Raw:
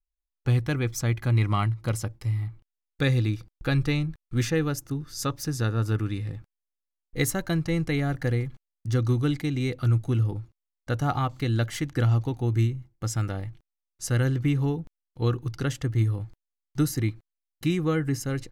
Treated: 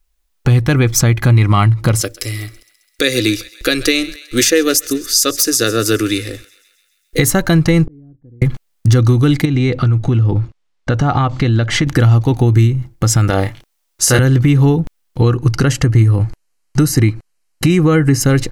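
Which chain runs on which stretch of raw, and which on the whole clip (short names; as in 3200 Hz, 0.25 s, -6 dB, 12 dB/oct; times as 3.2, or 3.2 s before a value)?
2.01–7.19 tone controls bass -13 dB, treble +8 dB + fixed phaser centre 370 Hz, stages 4 + thinning echo 0.133 s, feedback 61%, high-pass 710 Hz, level -21 dB
7.86–8.42 synth low-pass 300 Hz, resonance Q 1.6 + flipped gate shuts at -34 dBFS, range -39 dB
9.45–11.87 air absorption 98 m + compressor 5:1, threshold -32 dBFS
13.3–14.19 tone controls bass -10 dB, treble +2 dB + doubler 31 ms -3.5 dB
15.21–18.21 LPF 12000 Hz 24 dB/oct + notch 3500 Hz, Q 5.6
whole clip: compressor, threshold -29 dBFS; maximiser +23 dB; gain -1 dB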